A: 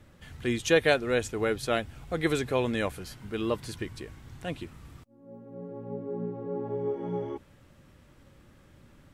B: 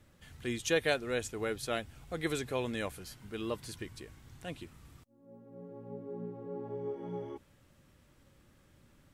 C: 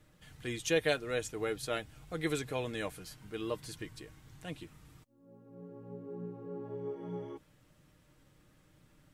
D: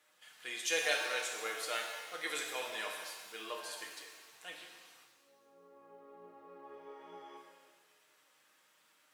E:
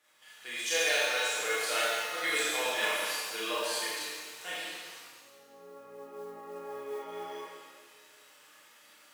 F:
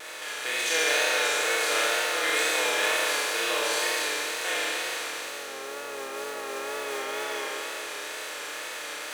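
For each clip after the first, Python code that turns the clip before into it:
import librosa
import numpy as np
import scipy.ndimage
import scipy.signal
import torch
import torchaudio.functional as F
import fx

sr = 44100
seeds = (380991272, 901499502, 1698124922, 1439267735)

y1 = fx.high_shelf(x, sr, hz=4100.0, db=6.5)
y1 = y1 * librosa.db_to_amplitude(-7.5)
y2 = y1 + 0.42 * np.pad(y1, (int(6.5 * sr / 1000.0), 0))[:len(y1)]
y2 = y2 * librosa.db_to_amplitude(-1.5)
y3 = scipy.signal.sosfilt(scipy.signal.butter(2, 870.0, 'highpass', fs=sr, output='sos'), y2)
y3 = fx.rev_shimmer(y3, sr, seeds[0], rt60_s=1.4, semitones=7, shimmer_db=-8, drr_db=0.5)
y4 = fx.rev_schroeder(y3, sr, rt60_s=0.87, comb_ms=26, drr_db=-5.5)
y4 = fx.mod_noise(y4, sr, seeds[1], snr_db=22)
y4 = fx.rider(y4, sr, range_db=3, speed_s=0.5)
y4 = y4 * librosa.db_to_amplitude(2.0)
y5 = fx.bin_compress(y4, sr, power=0.4)
y5 = fx.peak_eq(y5, sr, hz=190.0, db=-14.5, octaves=0.31)
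y5 = fx.vibrato(y5, sr, rate_hz=2.1, depth_cents=53.0)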